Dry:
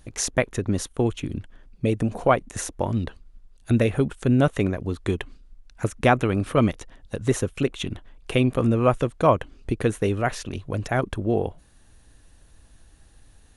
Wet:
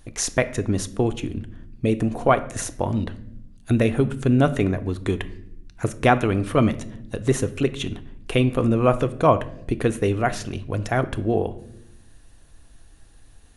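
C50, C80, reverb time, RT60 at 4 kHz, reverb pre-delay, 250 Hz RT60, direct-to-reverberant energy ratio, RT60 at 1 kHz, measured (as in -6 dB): 16.0 dB, 19.0 dB, 0.75 s, 0.50 s, 3 ms, 1.3 s, 10.5 dB, 0.55 s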